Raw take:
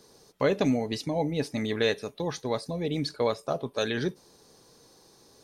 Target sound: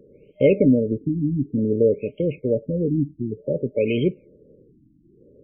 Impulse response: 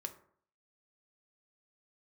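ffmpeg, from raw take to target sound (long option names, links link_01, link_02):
-af "afftfilt=real='re*(1-between(b*sr/4096,610,2100))':imag='im*(1-between(b*sr/4096,610,2100))':win_size=4096:overlap=0.75,afftfilt=real='re*lt(b*sr/1024,320*pow(3300/320,0.5+0.5*sin(2*PI*0.55*pts/sr)))':imag='im*lt(b*sr/1024,320*pow(3300/320,0.5+0.5*sin(2*PI*0.55*pts/sr)))':win_size=1024:overlap=0.75,volume=9dB"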